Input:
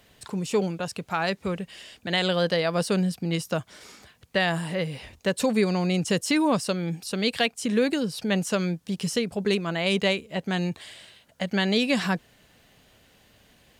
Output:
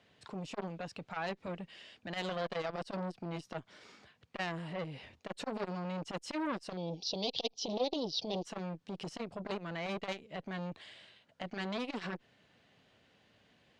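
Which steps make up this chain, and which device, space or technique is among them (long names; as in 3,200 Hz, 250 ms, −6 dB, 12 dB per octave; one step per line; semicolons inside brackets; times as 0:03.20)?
valve radio (band-pass filter 99–4,300 Hz; tube saturation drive 16 dB, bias 0.4; saturating transformer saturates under 1,100 Hz)
0:06.77–0:08.45: drawn EQ curve 260 Hz 0 dB, 420 Hz +7 dB, 890 Hz +2 dB, 1,600 Hz −26 dB, 3,400 Hz +13 dB, 5,900 Hz +13 dB, 8,600 Hz −22 dB
level −6.5 dB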